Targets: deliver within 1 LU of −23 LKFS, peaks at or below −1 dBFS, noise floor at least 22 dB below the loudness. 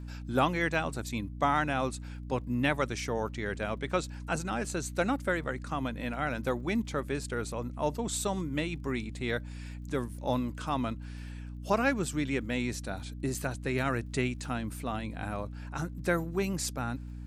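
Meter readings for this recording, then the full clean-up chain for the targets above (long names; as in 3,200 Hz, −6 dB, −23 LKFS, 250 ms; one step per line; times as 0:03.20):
crackle rate 31 per second; mains hum 60 Hz; hum harmonics up to 300 Hz; level of the hum −39 dBFS; integrated loudness −32.5 LKFS; sample peak −13.0 dBFS; target loudness −23.0 LKFS
→ click removal
mains-hum notches 60/120/180/240/300 Hz
level +9.5 dB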